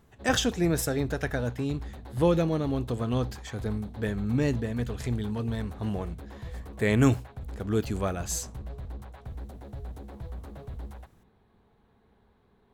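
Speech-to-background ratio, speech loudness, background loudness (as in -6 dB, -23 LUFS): 13.0 dB, -29.0 LUFS, -42.0 LUFS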